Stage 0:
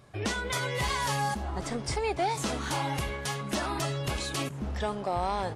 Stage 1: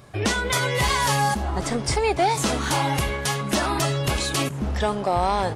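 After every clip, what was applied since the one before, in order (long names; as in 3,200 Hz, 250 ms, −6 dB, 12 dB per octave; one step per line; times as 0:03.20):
high-shelf EQ 11,000 Hz +4.5 dB
level +8 dB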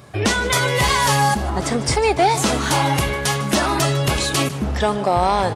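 high-pass filter 57 Hz
single-tap delay 151 ms −16.5 dB
level +4.5 dB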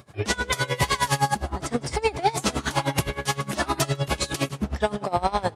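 tremolo with a sine in dB 9.7 Hz, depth 21 dB
level −1.5 dB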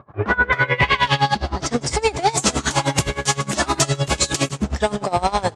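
leveller curve on the samples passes 1
low-pass filter sweep 1,100 Hz → 7,500 Hz, 0:00.09–0:01.90
level +1.5 dB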